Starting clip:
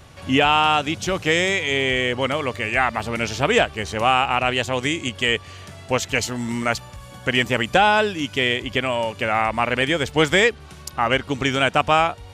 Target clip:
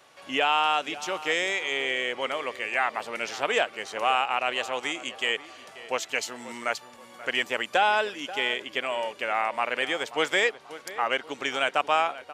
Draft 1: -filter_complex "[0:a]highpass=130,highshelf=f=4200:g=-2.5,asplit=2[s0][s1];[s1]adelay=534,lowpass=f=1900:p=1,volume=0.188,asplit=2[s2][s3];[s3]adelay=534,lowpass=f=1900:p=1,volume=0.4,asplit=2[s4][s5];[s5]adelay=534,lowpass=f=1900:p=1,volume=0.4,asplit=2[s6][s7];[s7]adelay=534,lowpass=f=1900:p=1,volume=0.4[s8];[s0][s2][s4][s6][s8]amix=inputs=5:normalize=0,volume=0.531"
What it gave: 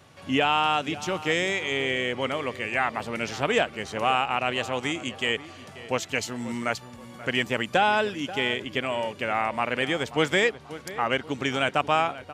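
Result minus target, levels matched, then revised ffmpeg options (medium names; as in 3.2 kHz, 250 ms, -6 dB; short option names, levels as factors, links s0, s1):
125 Hz band +17.0 dB
-filter_complex "[0:a]highpass=460,highshelf=f=4200:g=-2.5,asplit=2[s0][s1];[s1]adelay=534,lowpass=f=1900:p=1,volume=0.188,asplit=2[s2][s3];[s3]adelay=534,lowpass=f=1900:p=1,volume=0.4,asplit=2[s4][s5];[s5]adelay=534,lowpass=f=1900:p=1,volume=0.4,asplit=2[s6][s7];[s7]adelay=534,lowpass=f=1900:p=1,volume=0.4[s8];[s0][s2][s4][s6][s8]amix=inputs=5:normalize=0,volume=0.531"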